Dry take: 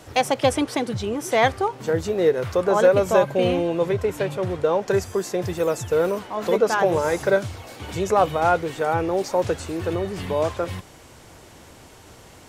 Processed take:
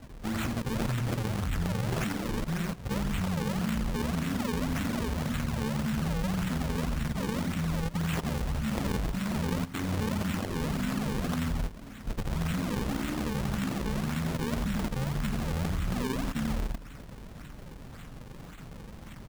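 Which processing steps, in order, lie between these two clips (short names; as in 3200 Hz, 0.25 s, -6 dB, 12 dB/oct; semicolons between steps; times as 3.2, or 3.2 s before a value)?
half-waves squared off; speed mistake 78 rpm record played at 33 rpm; limiter -14.5 dBFS, peak gain reduction 11.5 dB; high shelf 4000 Hz +3 dB; feedback echo 0.132 s, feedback 42%, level -4 dB; level quantiser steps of 14 dB; band shelf 580 Hz -14 dB; decimation with a swept rate 38×, swing 160% 1.2 Hz; granular stretch 0.66×, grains 90 ms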